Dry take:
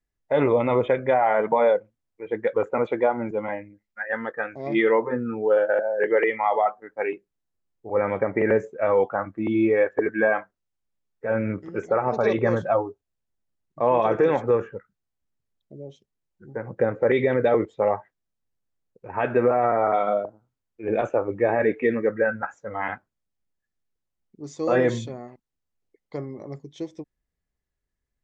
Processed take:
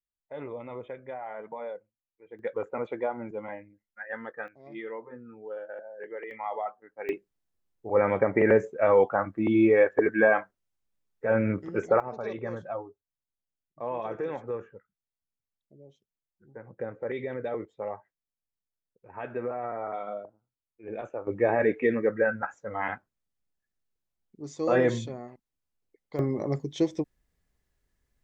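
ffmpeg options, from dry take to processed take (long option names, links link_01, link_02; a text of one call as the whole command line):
ffmpeg -i in.wav -af "asetnsamples=nb_out_samples=441:pad=0,asendcmd='2.39 volume volume -9dB;4.48 volume volume -18.5dB;6.31 volume volume -11.5dB;7.09 volume volume 0dB;12 volume volume -13dB;21.27 volume volume -2.5dB;26.19 volume volume 7.5dB',volume=-18.5dB" out.wav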